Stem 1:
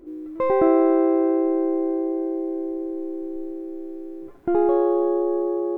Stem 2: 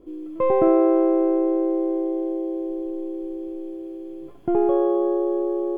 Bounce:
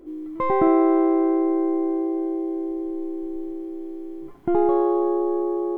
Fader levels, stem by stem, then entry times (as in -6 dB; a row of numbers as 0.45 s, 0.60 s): +0.5 dB, -6.0 dB; 0.00 s, 0.00 s